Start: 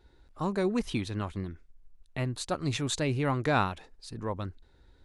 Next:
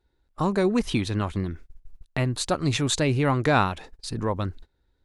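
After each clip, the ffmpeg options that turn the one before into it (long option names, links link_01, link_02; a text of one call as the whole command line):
ffmpeg -i in.wav -filter_complex "[0:a]agate=range=-21dB:threshold=-50dB:ratio=16:detection=peak,asplit=2[link_01][link_02];[link_02]acompressor=threshold=-37dB:ratio=6,volume=2dB[link_03];[link_01][link_03]amix=inputs=2:normalize=0,volume=3.5dB" out.wav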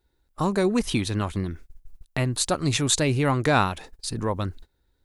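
ffmpeg -i in.wav -af "highshelf=frequency=7500:gain=11.5" out.wav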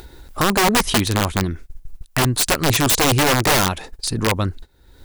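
ffmpeg -i in.wav -af "aeval=exprs='0.398*(cos(1*acos(clip(val(0)/0.398,-1,1)))-cos(1*PI/2))+0.00794*(cos(5*acos(clip(val(0)/0.398,-1,1)))-cos(5*PI/2))':channel_layout=same,aeval=exprs='(mod(6.68*val(0)+1,2)-1)/6.68':channel_layout=same,acompressor=mode=upward:threshold=-29dB:ratio=2.5,volume=6.5dB" out.wav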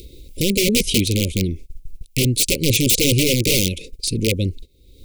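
ffmpeg -i in.wav -af "asuperstop=centerf=1100:order=20:qfactor=0.67,volume=1dB" out.wav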